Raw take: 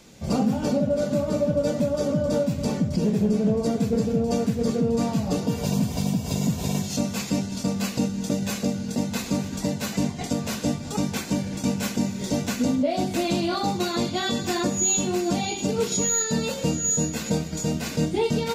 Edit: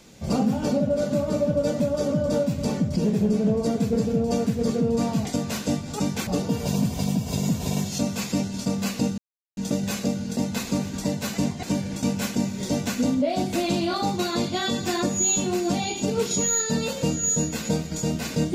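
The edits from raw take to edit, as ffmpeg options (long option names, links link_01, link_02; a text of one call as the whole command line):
ffmpeg -i in.wav -filter_complex "[0:a]asplit=5[link_01][link_02][link_03][link_04][link_05];[link_01]atrim=end=5.252[link_06];[link_02]atrim=start=10.218:end=11.242[link_07];[link_03]atrim=start=5.248:end=8.16,asetpts=PTS-STARTPTS,afade=type=out:start_time=2.908:duration=0.004:curve=hsin,apad=pad_dur=0.39[link_08];[link_04]atrim=start=8.16:end=10.222,asetpts=PTS-STARTPTS,afade=type=in:duration=0.004:curve=hsin[link_09];[link_05]atrim=start=11.238[link_10];[link_06][link_07]acrossfade=duration=0.004:curve1=hsin:curve2=hsin[link_11];[link_08][link_09]concat=n=2:v=0:a=1[link_12];[link_11][link_12]acrossfade=duration=0.004:curve1=hsin:curve2=hsin[link_13];[link_13][link_10]acrossfade=duration=0.004:curve1=hsin:curve2=hsin" out.wav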